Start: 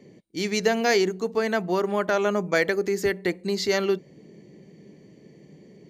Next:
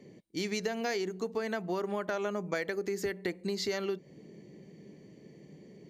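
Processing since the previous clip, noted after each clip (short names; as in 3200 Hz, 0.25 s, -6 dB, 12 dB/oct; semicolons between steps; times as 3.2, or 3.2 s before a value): compressor, threshold -27 dBFS, peak gain reduction 11 dB; gain -3 dB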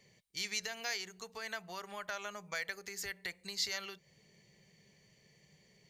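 passive tone stack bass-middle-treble 10-0-10; gain +3.5 dB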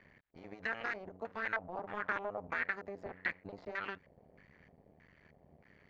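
cycle switcher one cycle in 2, muted; limiter -29.5 dBFS, peak gain reduction 9 dB; LFO low-pass square 1.6 Hz 690–1700 Hz; gain +5.5 dB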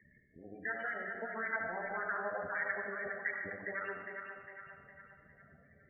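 split-band echo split 510 Hz, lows 0.172 s, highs 0.407 s, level -6 dB; loudest bins only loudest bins 16; digital reverb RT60 1.4 s, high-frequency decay 0.95×, pre-delay 25 ms, DRR 2.5 dB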